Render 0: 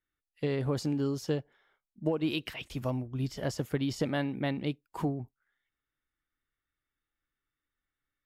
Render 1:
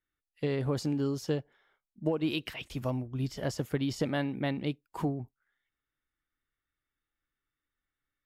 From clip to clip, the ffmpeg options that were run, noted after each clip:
ffmpeg -i in.wav -af anull out.wav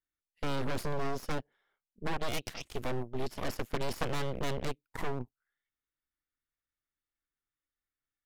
ffmpeg -i in.wav -af "aeval=exprs='0.141*(cos(1*acos(clip(val(0)/0.141,-1,1)))-cos(1*PI/2))+0.0251*(cos(3*acos(clip(val(0)/0.141,-1,1)))-cos(3*PI/2))+0.0708*(cos(6*acos(clip(val(0)/0.141,-1,1)))-cos(6*PI/2))':channel_layout=same,aeval=exprs='clip(val(0),-1,0.0562)':channel_layout=same,volume=-1.5dB" out.wav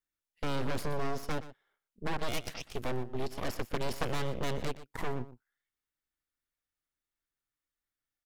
ffmpeg -i in.wav -af "aecho=1:1:121:0.178" out.wav

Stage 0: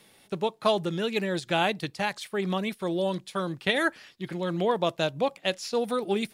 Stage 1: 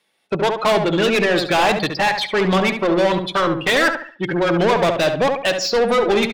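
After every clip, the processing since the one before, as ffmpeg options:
ffmpeg -i in.wav -filter_complex "[0:a]afftdn=noise_reduction=30:noise_floor=-39,asplit=2[link_01][link_02];[link_02]highpass=frequency=720:poles=1,volume=30dB,asoftclip=type=tanh:threshold=-9dB[link_03];[link_01][link_03]amix=inputs=2:normalize=0,lowpass=frequency=4200:poles=1,volume=-6dB,asplit=2[link_04][link_05];[link_05]adelay=70,lowpass=frequency=2100:poles=1,volume=-5.5dB,asplit=2[link_06][link_07];[link_07]adelay=70,lowpass=frequency=2100:poles=1,volume=0.35,asplit=2[link_08][link_09];[link_09]adelay=70,lowpass=frequency=2100:poles=1,volume=0.35,asplit=2[link_10][link_11];[link_11]adelay=70,lowpass=frequency=2100:poles=1,volume=0.35[link_12];[link_04][link_06][link_08][link_10][link_12]amix=inputs=5:normalize=0" out.wav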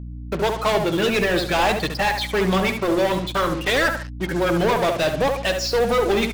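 ffmpeg -i in.wav -af "acrusher=bits=4:mix=0:aa=0.5,aeval=exprs='val(0)+0.0355*(sin(2*PI*60*n/s)+sin(2*PI*2*60*n/s)/2+sin(2*PI*3*60*n/s)/3+sin(2*PI*4*60*n/s)/4+sin(2*PI*5*60*n/s)/5)':channel_layout=same,flanger=delay=1.2:depth=7.7:regen=-65:speed=0.51:shape=triangular,volume=1dB" out.wav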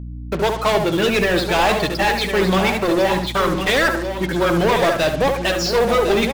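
ffmpeg -i in.wav -af "aecho=1:1:1055:0.376,volume=2.5dB" out.wav

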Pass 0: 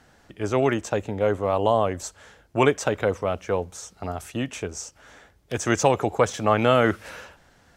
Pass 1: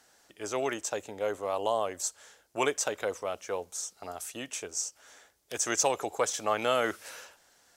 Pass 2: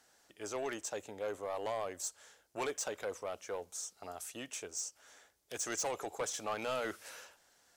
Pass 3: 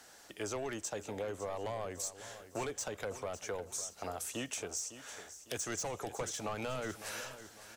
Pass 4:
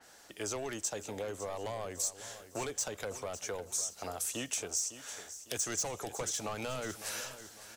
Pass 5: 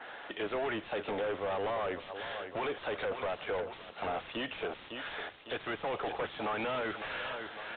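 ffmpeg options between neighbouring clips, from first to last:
ffmpeg -i in.wav -af "bass=frequency=250:gain=-15,treble=frequency=4000:gain=12,volume=-7.5dB" out.wav
ffmpeg -i in.wav -af "asoftclip=type=tanh:threshold=-25.5dB,volume=-5dB" out.wav
ffmpeg -i in.wav -filter_complex "[0:a]acrossover=split=180[link_01][link_02];[link_02]acompressor=threshold=-48dB:ratio=6[link_03];[link_01][link_03]amix=inputs=2:normalize=0,aecho=1:1:555|1110|1665|2220:0.211|0.0845|0.0338|0.0135,volume=10.5dB" out.wav
ffmpeg -i in.wav -af "adynamicequalizer=threshold=0.00141:dfrequency=3400:dqfactor=0.7:tfrequency=3400:tqfactor=0.7:attack=5:release=100:ratio=0.375:range=3:mode=boostabove:tftype=highshelf" out.wav
ffmpeg -i in.wav -filter_complex "[0:a]asplit=2[link_01][link_02];[link_02]highpass=frequency=720:poles=1,volume=33dB,asoftclip=type=tanh:threshold=-16.5dB[link_03];[link_01][link_03]amix=inputs=2:normalize=0,lowpass=frequency=2300:poles=1,volume=-6dB,volume=-8.5dB" -ar 8000 -c:a pcm_alaw out.wav

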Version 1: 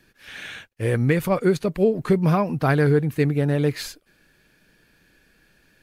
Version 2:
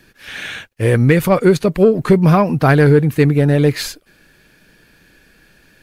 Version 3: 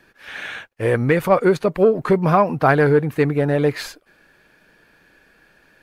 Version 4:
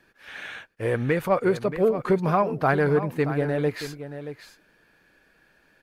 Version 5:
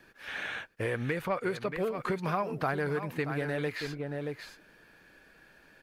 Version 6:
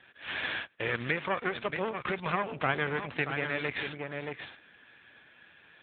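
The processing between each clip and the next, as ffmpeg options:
ffmpeg -i in.wav -af "acontrast=71,volume=2dB" out.wav
ffmpeg -i in.wav -af "equalizer=frequency=900:width=0.42:gain=11.5,volume=-10.5dB" out.wav
ffmpeg -i in.wav -af "aecho=1:1:628:0.266,volume=-6.5dB" out.wav
ffmpeg -i in.wav -filter_complex "[0:a]acrossover=split=1300|4400[link_01][link_02][link_03];[link_01]acompressor=threshold=-35dB:ratio=4[link_04];[link_02]acompressor=threshold=-39dB:ratio=4[link_05];[link_03]acompressor=threshold=-59dB:ratio=4[link_06];[link_04][link_05][link_06]amix=inputs=3:normalize=0,volume=2.5dB" out.wav
ffmpeg -i in.wav -af "crystalizer=i=9.5:c=0,aeval=exprs='max(val(0),0)':channel_layout=same,volume=1dB" -ar 8000 -c:a libopencore_amrnb -b:a 10200 out.amr

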